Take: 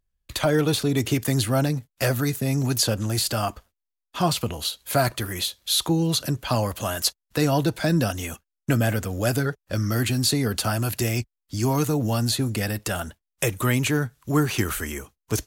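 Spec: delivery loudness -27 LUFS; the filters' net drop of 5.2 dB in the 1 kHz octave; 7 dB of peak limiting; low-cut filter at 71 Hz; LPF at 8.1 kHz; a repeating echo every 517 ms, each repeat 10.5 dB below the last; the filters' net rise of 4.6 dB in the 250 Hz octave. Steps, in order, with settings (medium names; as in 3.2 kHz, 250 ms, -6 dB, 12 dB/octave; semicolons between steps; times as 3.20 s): high-pass 71 Hz; low-pass 8.1 kHz; peaking EQ 250 Hz +6.5 dB; peaking EQ 1 kHz -8.5 dB; peak limiter -14.5 dBFS; feedback delay 517 ms, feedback 30%, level -10.5 dB; trim -2 dB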